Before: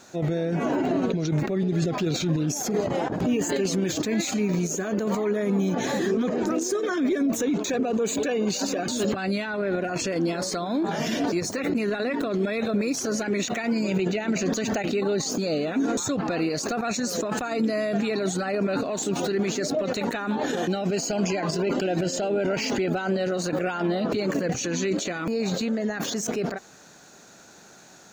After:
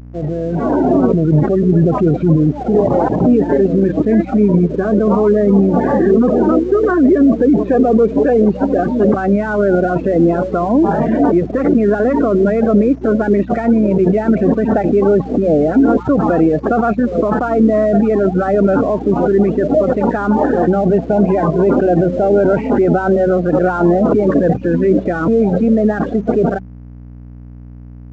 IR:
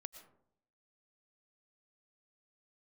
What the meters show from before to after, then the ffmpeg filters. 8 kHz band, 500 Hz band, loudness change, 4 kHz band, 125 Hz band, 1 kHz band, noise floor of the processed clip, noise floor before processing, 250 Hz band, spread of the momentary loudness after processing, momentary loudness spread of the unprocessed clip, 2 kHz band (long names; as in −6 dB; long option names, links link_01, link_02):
below −20 dB, +13.5 dB, +12.5 dB, below −10 dB, +13.0 dB, +12.5 dB, −33 dBFS, −50 dBFS, +13.0 dB, 3 LU, 2 LU, +5.5 dB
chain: -af "highpass=frequency=44:poles=1,afftfilt=real='re*gte(hypot(re,im),0.0355)':imag='im*gte(hypot(re,im),0.0355)':win_size=1024:overlap=0.75,acontrast=66,lowpass=frequency=1400:width=0.5412,lowpass=frequency=1400:width=1.3066,dynaudnorm=framelen=130:gausssize=11:maxgain=13.5dB,aeval=exprs='val(0)+0.0355*(sin(2*PI*60*n/s)+sin(2*PI*2*60*n/s)/2+sin(2*PI*3*60*n/s)/3+sin(2*PI*4*60*n/s)/4+sin(2*PI*5*60*n/s)/5)':channel_layout=same,aresample=16000,aeval=exprs='sgn(val(0))*max(abs(val(0))-0.00891,0)':channel_layout=same,aresample=44100,bandreject=frequency=94.03:width_type=h:width=4,bandreject=frequency=188.06:width_type=h:width=4,volume=-1dB"